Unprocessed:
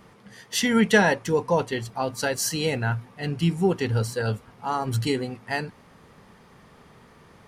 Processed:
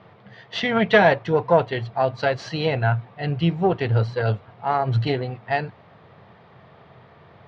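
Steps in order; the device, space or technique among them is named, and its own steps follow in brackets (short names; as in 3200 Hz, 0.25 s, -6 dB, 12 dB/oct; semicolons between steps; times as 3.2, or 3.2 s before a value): guitar amplifier (tube stage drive 11 dB, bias 0.7; tone controls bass -2 dB, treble -8 dB; speaker cabinet 86–4300 Hz, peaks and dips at 92 Hz +9 dB, 130 Hz +8 dB, 250 Hz -6 dB, 670 Hz +9 dB, 3800 Hz +4 dB); gain +5.5 dB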